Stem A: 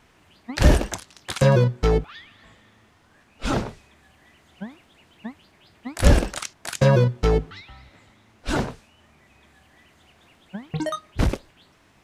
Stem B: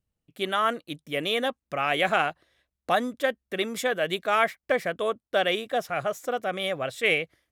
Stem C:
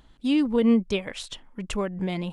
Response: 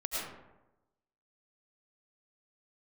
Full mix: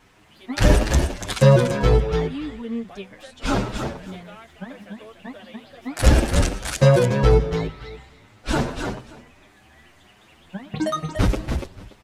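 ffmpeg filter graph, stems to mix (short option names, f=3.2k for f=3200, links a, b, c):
-filter_complex "[0:a]acontrast=25,volume=-1dB,asplit=3[a][b][c];[b]volume=-15dB[d];[c]volume=-5dB[e];[1:a]acompressor=threshold=-28dB:ratio=6,volume=-11dB,asplit=2[f][g];[g]volume=-9dB[h];[2:a]adelay=2050,volume=-8dB[i];[3:a]atrim=start_sample=2205[j];[d][j]afir=irnorm=-1:irlink=0[k];[e][h]amix=inputs=2:normalize=0,aecho=0:1:289|578|867:1|0.15|0.0225[l];[a][f][i][k][l]amix=inputs=5:normalize=0,asplit=2[m][n];[n]adelay=8.1,afreqshift=1.7[o];[m][o]amix=inputs=2:normalize=1"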